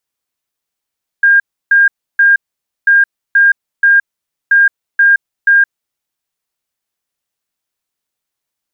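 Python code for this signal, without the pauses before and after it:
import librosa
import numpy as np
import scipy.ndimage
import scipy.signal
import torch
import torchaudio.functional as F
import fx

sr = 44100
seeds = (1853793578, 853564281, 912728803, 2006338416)

y = fx.beep_pattern(sr, wave='sine', hz=1610.0, on_s=0.17, off_s=0.31, beeps=3, pause_s=0.51, groups=3, level_db=-4.5)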